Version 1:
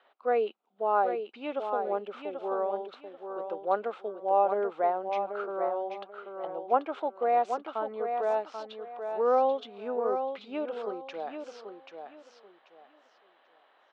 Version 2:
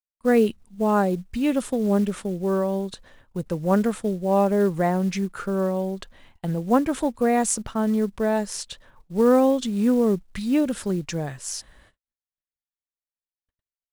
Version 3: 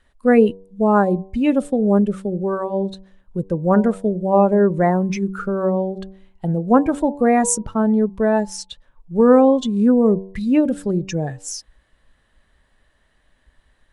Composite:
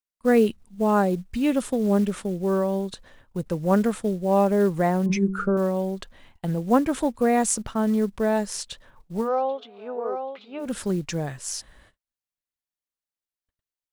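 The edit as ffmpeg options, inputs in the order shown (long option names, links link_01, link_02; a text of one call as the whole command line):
ffmpeg -i take0.wav -i take1.wav -i take2.wav -filter_complex "[1:a]asplit=3[link_01][link_02][link_03];[link_01]atrim=end=5.062[link_04];[2:a]atrim=start=5.058:end=5.572[link_05];[link_02]atrim=start=5.568:end=9.3[link_06];[0:a]atrim=start=9.14:end=10.74[link_07];[link_03]atrim=start=10.58[link_08];[link_04][link_05]acrossfade=duration=0.004:curve1=hsin:curve2=hsin[link_09];[link_09][link_06]acrossfade=duration=0.004:curve1=hsin:curve2=hsin[link_10];[link_10][link_07]acrossfade=duration=0.16:curve1=tri:curve2=tri[link_11];[link_11][link_08]acrossfade=duration=0.16:curve1=tri:curve2=tri" out.wav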